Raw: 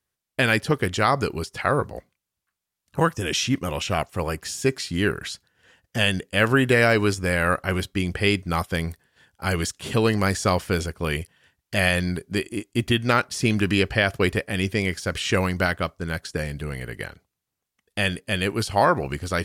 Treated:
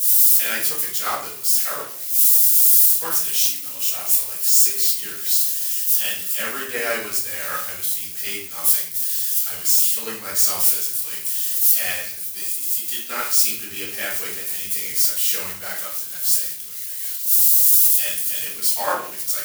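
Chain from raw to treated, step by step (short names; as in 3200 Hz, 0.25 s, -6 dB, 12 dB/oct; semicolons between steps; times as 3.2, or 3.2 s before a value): switching spikes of -14.5 dBFS; tilt +4.5 dB/oct; notches 60/120/180 Hz; shoebox room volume 150 m³, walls mixed, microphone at 1.7 m; three-band expander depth 100%; gain -17 dB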